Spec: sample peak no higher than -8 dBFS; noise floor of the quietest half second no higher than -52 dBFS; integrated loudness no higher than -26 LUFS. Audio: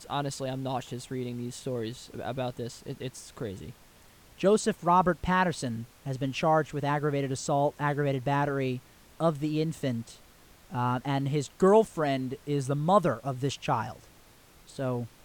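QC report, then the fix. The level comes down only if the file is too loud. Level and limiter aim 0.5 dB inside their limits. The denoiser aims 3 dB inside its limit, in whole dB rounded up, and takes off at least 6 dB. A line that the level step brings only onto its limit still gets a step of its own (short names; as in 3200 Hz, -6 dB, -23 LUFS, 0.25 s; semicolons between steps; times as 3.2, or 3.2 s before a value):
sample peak -10.0 dBFS: OK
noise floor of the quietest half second -56 dBFS: OK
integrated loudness -29.5 LUFS: OK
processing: none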